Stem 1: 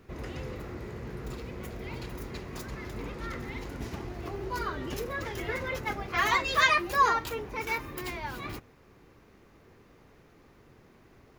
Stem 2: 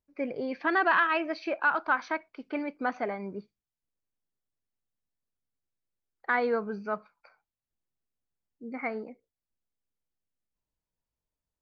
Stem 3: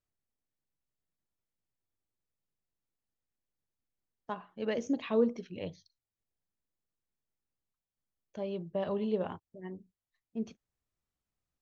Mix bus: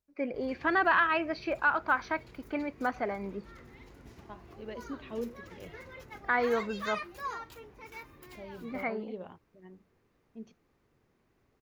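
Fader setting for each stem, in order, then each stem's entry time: -14.5 dB, -1.0 dB, -9.5 dB; 0.25 s, 0.00 s, 0.00 s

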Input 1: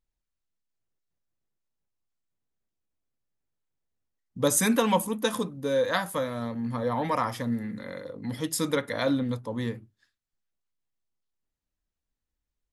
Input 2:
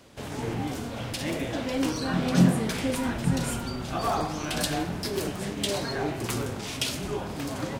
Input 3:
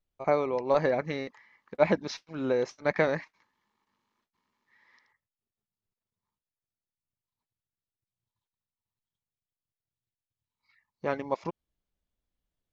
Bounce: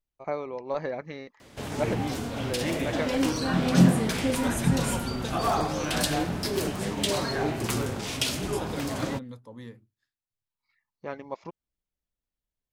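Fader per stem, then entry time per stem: -12.0 dB, +1.5 dB, -6.0 dB; 0.00 s, 1.40 s, 0.00 s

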